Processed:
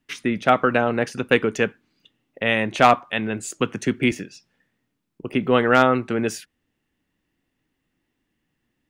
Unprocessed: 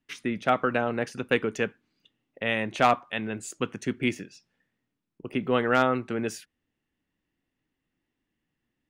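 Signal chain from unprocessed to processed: 3.59–4.12 three-band squash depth 40%; gain +6.5 dB

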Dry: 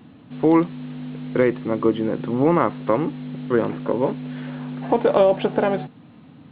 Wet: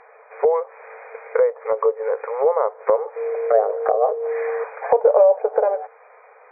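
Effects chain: 3.16–4.64 frequency shift +210 Hz; in parallel at +0.5 dB: compressor, threshold -27 dBFS, peak gain reduction 15 dB; on the sum: brick-wall FIR band-pass 420–2500 Hz; treble ducked by the level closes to 670 Hz, closed at -18.5 dBFS; gain +3.5 dB

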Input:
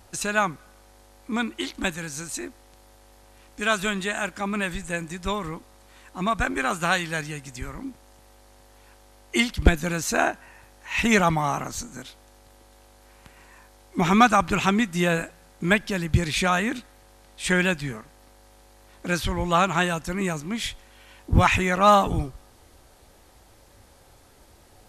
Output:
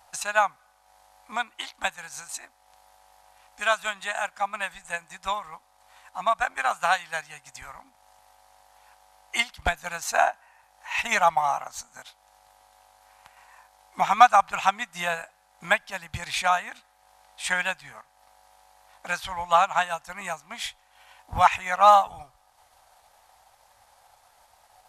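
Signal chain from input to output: resonant low shelf 520 Hz -13.5 dB, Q 3; transient shaper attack +3 dB, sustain -6 dB; gain -4 dB

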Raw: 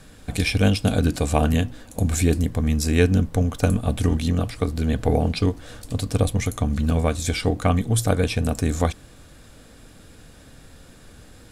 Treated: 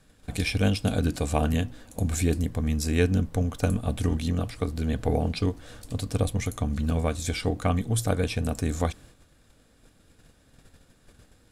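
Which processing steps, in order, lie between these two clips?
gate -44 dBFS, range -8 dB; gain -5 dB

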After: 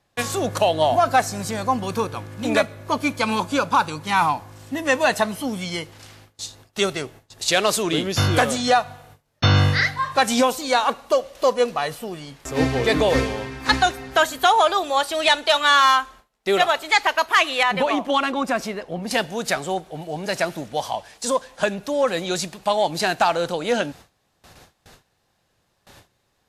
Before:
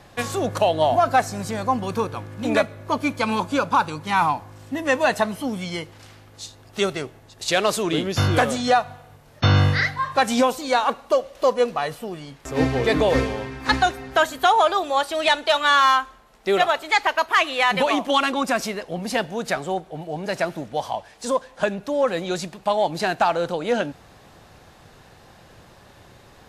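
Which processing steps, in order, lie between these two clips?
gate with hold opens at -37 dBFS; high shelf 2900 Hz +5.5 dB, from 17.63 s -5.5 dB, from 19.11 s +8 dB

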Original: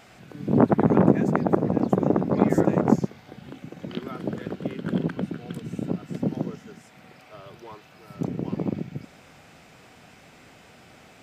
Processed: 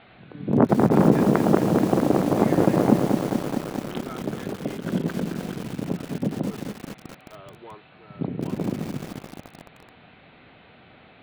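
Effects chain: steep low-pass 4200 Hz 96 dB/oct; lo-fi delay 0.215 s, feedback 80%, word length 6-bit, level -5 dB

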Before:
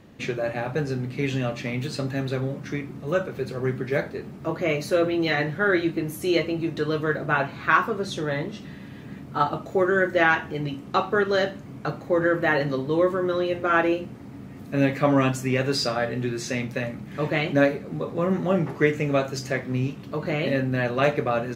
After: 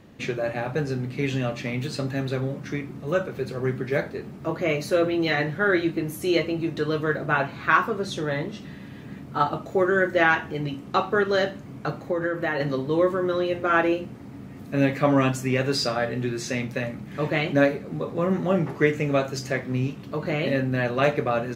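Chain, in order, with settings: 12.02–12.6 compressor, threshold -22 dBFS, peak gain reduction 6 dB

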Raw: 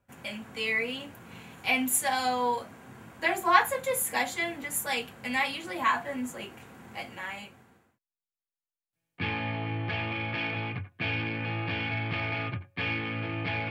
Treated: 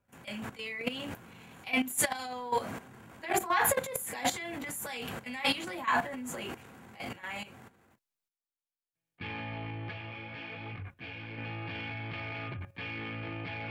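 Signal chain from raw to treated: transient shaper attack -7 dB, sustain +12 dB; level quantiser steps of 13 dB; 9.91–11.37 detuned doubles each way 19 cents -> 33 cents

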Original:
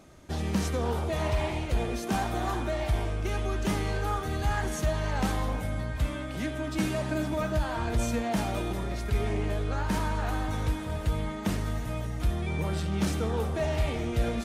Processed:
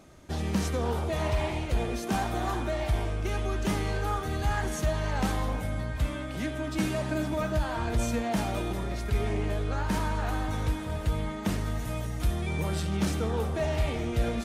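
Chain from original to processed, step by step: 11.79–12.97 high shelf 5000 Hz +6 dB

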